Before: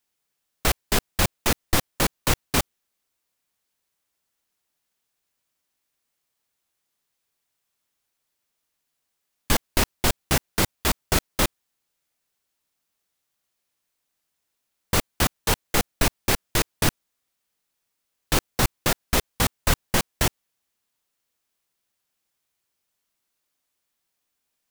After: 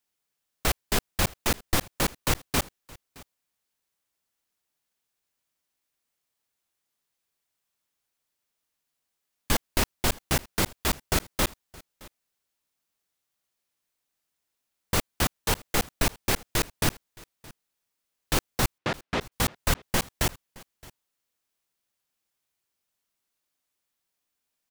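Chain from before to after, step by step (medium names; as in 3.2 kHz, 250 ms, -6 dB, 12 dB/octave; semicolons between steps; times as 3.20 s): 18.78–19.32 s: band-pass 100–3200 Hz; on a send: delay 619 ms -23 dB; on the sum: trim -3.5 dB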